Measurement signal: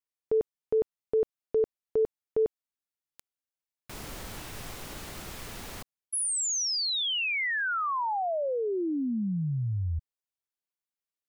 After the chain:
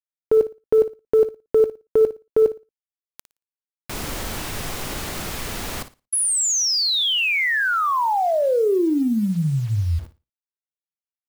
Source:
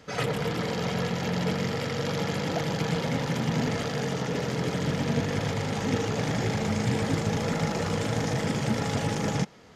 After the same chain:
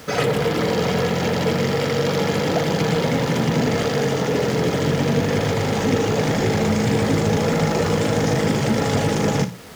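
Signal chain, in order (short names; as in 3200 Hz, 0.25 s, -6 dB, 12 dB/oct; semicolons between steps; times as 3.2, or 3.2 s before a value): notches 60/120/180 Hz; dynamic EQ 420 Hz, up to +4 dB, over -42 dBFS, Q 1.3; in parallel at +2.5 dB: compressor 16:1, threshold -34 dBFS; on the sum: requantised 8-bit, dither none; soft clip -11 dBFS; on a send: flutter echo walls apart 9.8 m, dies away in 0.26 s; on the sum: gain +4.5 dB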